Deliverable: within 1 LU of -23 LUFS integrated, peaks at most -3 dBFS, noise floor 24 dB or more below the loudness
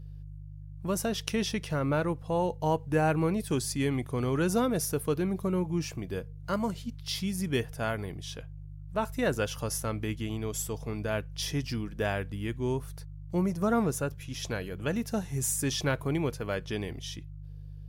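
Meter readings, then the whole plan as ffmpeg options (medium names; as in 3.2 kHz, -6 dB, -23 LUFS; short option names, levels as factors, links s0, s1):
hum 50 Hz; highest harmonic 150 Hz; hum level -40 dBFS; loudness -31.0 LUFS; peak level -9.5 dBFS; loudness target -23.0 LUFS
-> -af "bandreject=f=50:t=h:w=4,bandreject=f=100:t=h:w=4,bandreject=f=150:t=h:w=4"
-af "volume=2.51,alimiter=limit=0.708:level=0:latency=1"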